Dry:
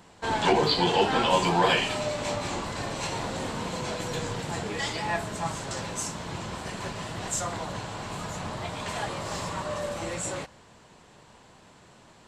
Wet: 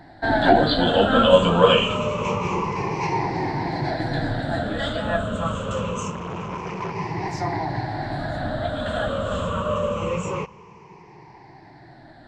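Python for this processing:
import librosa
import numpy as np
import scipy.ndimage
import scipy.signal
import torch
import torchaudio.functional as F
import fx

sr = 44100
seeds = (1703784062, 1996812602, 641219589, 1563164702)

y = fx.spec_ripple(x, sr, per_octave=0.78, drift_hz=-0.25, depth_db=18)
y = fx.spacing_loss(y, sr, db_at_10k=27)
y = fx.transformer_sat(y, sr, knee_hz=820.0, at=(6.1, 6.95))
y = F.gain(torch.from_numpy(y), 6.5).numpy()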